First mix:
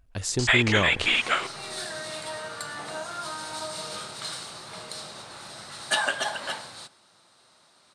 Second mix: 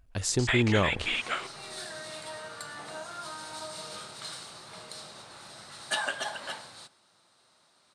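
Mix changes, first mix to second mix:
first sound -7.5 dB; second sound -5.5 dB

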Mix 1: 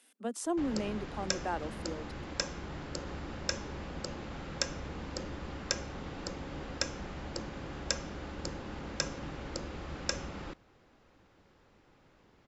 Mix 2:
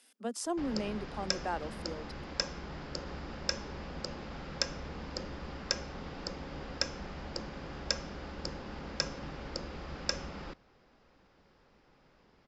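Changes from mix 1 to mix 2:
background: add distance through air 78 m; master: add graphic EQ with 31 bands 100 Hz -11 dB, 315 Hz -4 dB, 5 kHz +8 dB

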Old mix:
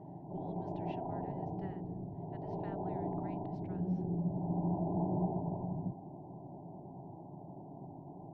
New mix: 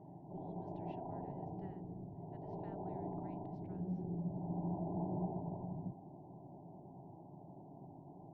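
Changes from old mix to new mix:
speech -9.5 dB; background -5.5 dB

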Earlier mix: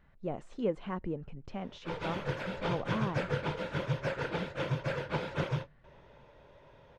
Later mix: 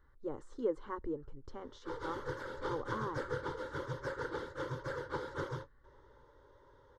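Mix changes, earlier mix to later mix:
background: send -9.0 dB; master: add static phaser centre 680 Hz, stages 6

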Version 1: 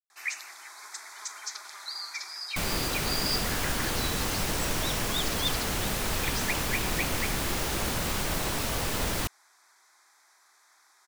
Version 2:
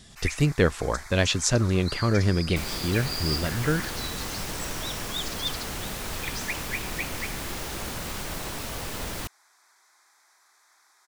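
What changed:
speech: unmuted; second sound -4.0 dB

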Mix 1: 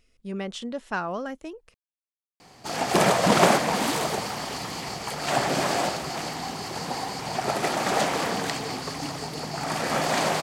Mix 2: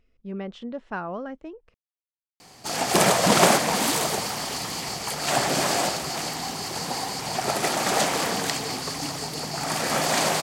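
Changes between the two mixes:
speech: add tape spacing loss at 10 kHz 27 dB; background: add treble shelf 4.6 kHz +9 dB

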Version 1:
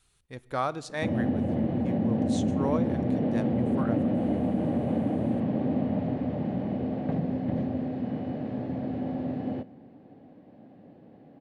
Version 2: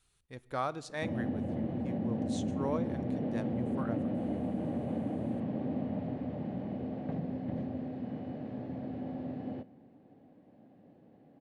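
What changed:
speech -5.0 dB; background -7.5 dB

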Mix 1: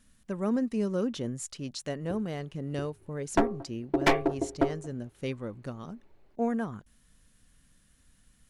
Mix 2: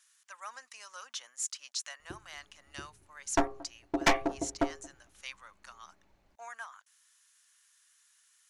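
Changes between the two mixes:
speech: add high-pass 990 Hz 24 dB/octave; master: add fifteen-band graphic EQ 100 Hz -5 dB, 400 Hz -10 dB, 6.3 kHz +7 dB

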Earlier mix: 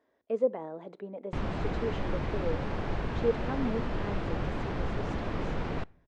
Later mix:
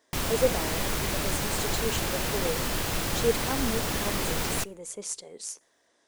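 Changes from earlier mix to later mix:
background: entry -1.20 s; master: remove tape spacing loss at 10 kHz 44 dB

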